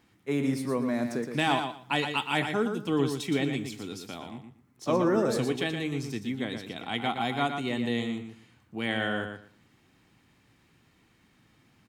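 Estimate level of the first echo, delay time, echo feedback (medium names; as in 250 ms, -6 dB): -7.0 dB, 118 ms, 19%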